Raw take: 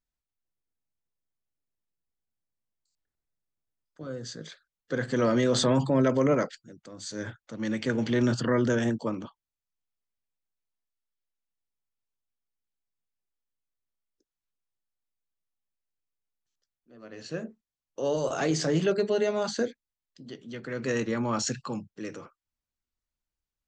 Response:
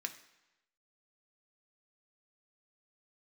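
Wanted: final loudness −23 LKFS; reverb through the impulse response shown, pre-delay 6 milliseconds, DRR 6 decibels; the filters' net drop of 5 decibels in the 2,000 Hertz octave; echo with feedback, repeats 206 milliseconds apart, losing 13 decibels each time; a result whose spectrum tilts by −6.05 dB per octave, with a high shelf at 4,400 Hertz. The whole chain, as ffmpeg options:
-filter_complex "[0:a]equalizer=frequency=2000:width_type=o:gain=-5.5,highshelf=frequency=4400:gain=-6.5,aecho=1:1:206|412|618:0.224|0.0493|0.0108,asplit=2[link_01][link_02];[1:a]atrim=start_sample=2205,adelay=6[link_03];[link_02][link_03]afir=irnorm=-1:irlink=0,volume=-5.5dB[link_04];[link_01][link_04]amix=inputs=2:normalize=0,volume=5.5dB"

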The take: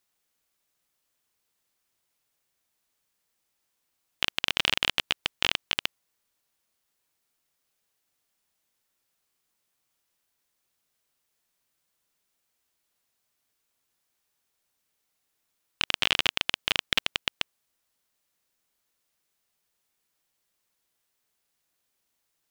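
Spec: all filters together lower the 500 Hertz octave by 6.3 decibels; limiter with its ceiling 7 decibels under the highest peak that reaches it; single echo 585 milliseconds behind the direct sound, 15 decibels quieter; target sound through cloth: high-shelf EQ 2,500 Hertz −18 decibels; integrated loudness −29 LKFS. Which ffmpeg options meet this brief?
ffmpeg -i in.wav -af "equalizer=frequency=500:width_type=o:gain=-7,alimiter=limit=-11.5dB:level=0:latency=1,highshelf=frequency=2500:gain=-18,aecho=1:1:585:0.178,volume=14dB" out.wav

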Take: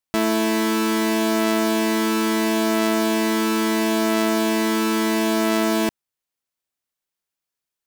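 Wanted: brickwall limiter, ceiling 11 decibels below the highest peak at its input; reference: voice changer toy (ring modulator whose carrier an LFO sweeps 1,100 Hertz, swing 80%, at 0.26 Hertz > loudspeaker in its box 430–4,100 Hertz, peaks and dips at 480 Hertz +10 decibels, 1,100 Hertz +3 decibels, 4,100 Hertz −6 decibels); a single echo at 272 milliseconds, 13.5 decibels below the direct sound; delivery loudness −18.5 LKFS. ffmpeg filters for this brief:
ffmpeg -i in.wav -af "alimiter=limit=-23.5dB:level=0:latency=1,aecho=1:1:272:0.211,aeval=exprs='val(0)*sin(2*PI*1100*n/s+1100*0.8/0.26*sin(2*PI*0.26*n/s))':channel_layout=same,highpass=430,equalizer=frequency=480:width_type=q:width=4:gain=10,equalizer=frequency=1100:width_type=q:width=4:gain=3,equalizer=frequency=4100:width_type=q:width=4:gain=-6,lowpass=frequency=4100:width=0.5412,lowpass=frequency=4100:width=1.3066,volume=13.5dB" out.wav

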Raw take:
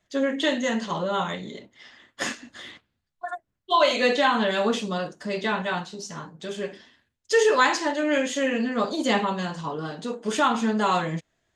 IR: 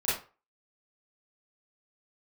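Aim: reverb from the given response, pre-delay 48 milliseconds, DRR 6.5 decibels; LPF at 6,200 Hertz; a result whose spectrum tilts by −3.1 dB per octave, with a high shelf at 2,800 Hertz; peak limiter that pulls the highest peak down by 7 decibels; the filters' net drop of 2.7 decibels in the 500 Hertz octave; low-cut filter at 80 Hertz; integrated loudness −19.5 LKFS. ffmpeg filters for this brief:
-filter_complex "[0:a]highpass=80,lowpass=6200,equalizer=frequency=500:width_type=o:gain=-3,highshelf=frequency=2800:gain=-3,alimiter=limit=-16.5dB:level=0:latency=1,asplit=2[link_01][link_02];[1:a]atrim=start_sample=2205,adelay=48[link_03];[link_02][link_03]afir=irnorm=-1:irlink=0,volume=-15.5dB[link_04];[link_01][link_04]amix=inputs=2:normalize=0,volume=8dB"

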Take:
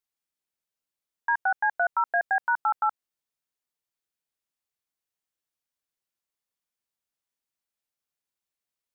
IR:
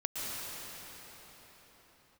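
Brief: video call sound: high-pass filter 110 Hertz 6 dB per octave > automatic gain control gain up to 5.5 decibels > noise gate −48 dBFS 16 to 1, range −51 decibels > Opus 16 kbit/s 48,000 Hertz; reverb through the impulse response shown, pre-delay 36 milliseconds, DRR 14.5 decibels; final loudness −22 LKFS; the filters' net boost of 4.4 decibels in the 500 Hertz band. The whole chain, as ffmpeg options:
-filter_complex "[0:a]equalizer=frequency=500:width_type=o:gain=8.5,asplit=2[link_01][link_02];[1:a]atrim=start_sample=2205,adelay=36[link_03];[link_02][link_03]afir=irnorm=-1:irlink=0,volume=-20dB[link_04];[link_01][link_04]amix=inputs=2:normalize=0,highpass=frequency=110:poles=1,dynaudnorm=maxgain=5.5dB,agate=range=-51dB:threshold=-48dB:ratio=16,volume=2.5dB" -ar 48000 -c:a libopus -b:a 16k

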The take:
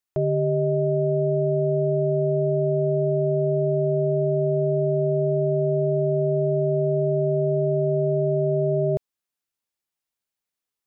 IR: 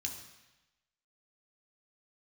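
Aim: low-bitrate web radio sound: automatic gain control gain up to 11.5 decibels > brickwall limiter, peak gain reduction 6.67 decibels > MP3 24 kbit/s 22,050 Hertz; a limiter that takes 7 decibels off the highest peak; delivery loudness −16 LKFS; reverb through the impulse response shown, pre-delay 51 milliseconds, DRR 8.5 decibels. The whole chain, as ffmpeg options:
-filter_complex "[0:a]alimiter=limit=-21dB:level=0:latency=1,asplit=2[link_01][link_02];[1:a]atrim=start_sample=2205,adelay=51[link_03];[link_02][link_03]afir=irnorm=-1:irlink=0,volume=-8dB[link_04];[link_01][link_04]amix=inputs=2:normalize=0,dynaudnorm=maxgain=11.5dB,alimiter=level_in=2.5dB:limit=-24dB:level=0:latency=1,volume=-2.5dB,volume=18dB" -ar 22050 -c:a libmp3lame -b:a 24k

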